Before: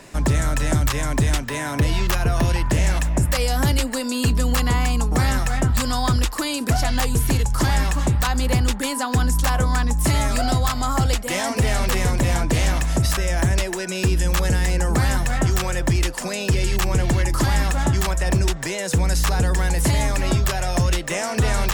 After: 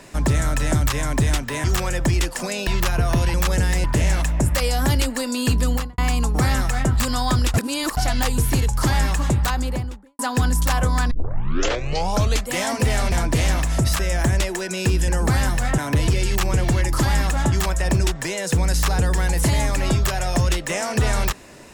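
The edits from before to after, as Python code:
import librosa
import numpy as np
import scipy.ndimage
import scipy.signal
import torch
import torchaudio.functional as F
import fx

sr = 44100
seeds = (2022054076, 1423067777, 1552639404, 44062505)

y = fx.studio_fade_out(x, sr, start_s=4.45, length_s=0.3)
y = fx.studio_fade_out(y, sr, start_s=8.14, length_s=0.82)
y = fx.edit(y, sr, fx.swap(start_s=1.64, length_s=0.3, other_s=15.46, other_length_s=1.03),
    fx.reverse_span(start_s=6.31, length_s=0.43),
    fx.tape_start(start_s=9.88, length_s=1.38),
    fx.cut(start_s=11.89, length_s=0.41),
    fx.move(start_s=14.26, length_s=0.5, to_s=2.61), tone=tone)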